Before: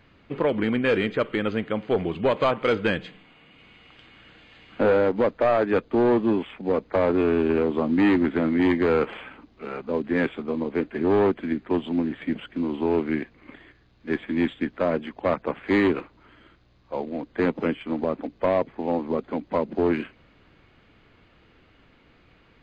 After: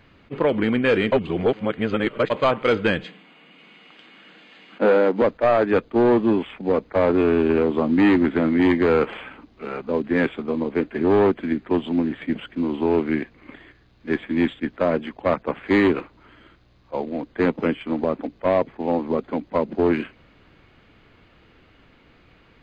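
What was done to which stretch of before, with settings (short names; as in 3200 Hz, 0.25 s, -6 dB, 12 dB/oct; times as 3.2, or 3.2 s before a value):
1.12–2.3 reverse
3.04–5.22 steep high-pass 160 Hz 48 dB/oct
whole clip: attack slew limiter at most 600 dB/s; gain +3 dB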